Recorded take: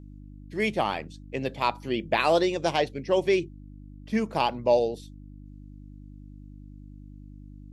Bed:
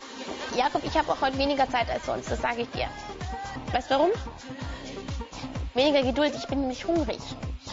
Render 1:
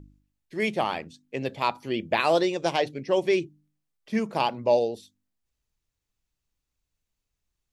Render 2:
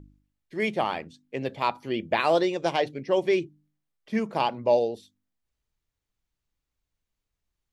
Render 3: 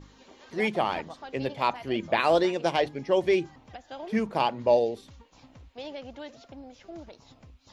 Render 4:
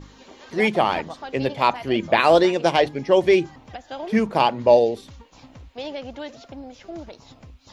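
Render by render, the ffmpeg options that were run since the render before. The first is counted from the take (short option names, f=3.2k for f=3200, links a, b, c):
-af "bandreject=f=50:t=h:w=4,bandreject=f=100:t=h:w=4,bandreject=f=150:t=h:w=4,bandreject=f=200:t=h:w=4,bandreject=f=250:t=h:w=4,bandreject=f=300:t=h:w=4"
-af "bass=f=250:g=-1,treble=f=4k:g=-5,bandreject=f=2.6k:w=27"
-filter_complex "[1:a]volume=-17.5dB[a];[0:a][a]amix=inputs=2:normalize=0"
-af "volume=7dB"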